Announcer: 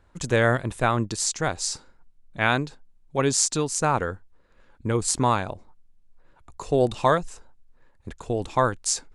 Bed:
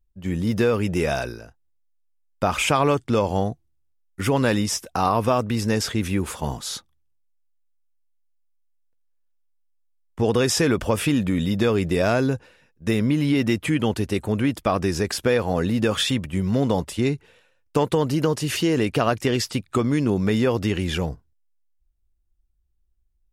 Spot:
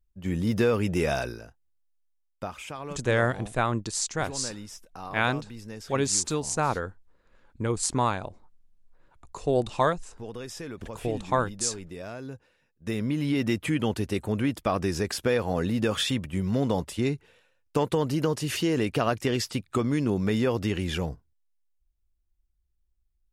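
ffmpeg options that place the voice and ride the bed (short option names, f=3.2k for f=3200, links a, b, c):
-filter_complex "[0:a]adelay=2750,volume=-3.5dB[a];[1:a]volume=11dB,afade=t=out:st=2.04:d=0.5:silence=0.16788,afade=t=in:st=12.21:d=1.33:silence=0.199526[b];[a][b]amix=inputs=2:normalize=0"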